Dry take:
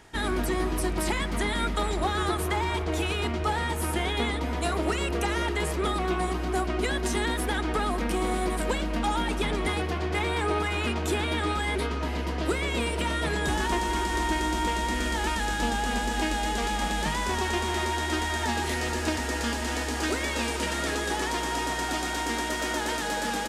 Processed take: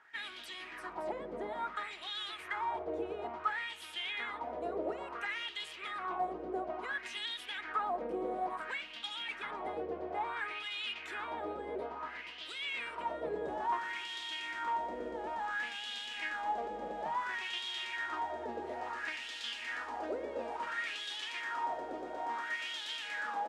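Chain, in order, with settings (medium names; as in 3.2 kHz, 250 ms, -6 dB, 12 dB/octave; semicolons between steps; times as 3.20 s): wah-wah 0.58 Hz 490–3400 Hz, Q 3.7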